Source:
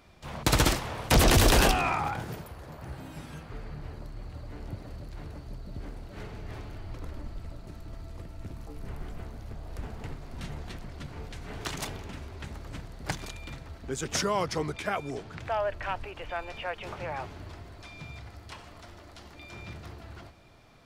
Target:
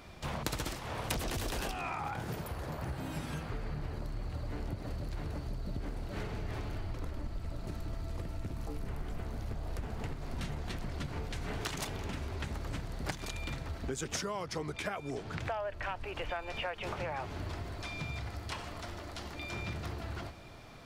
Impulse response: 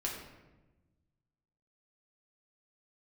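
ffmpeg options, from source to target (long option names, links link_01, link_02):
-af "acompressor=threshold=-39dB:ratio=12,volume=5.5dB"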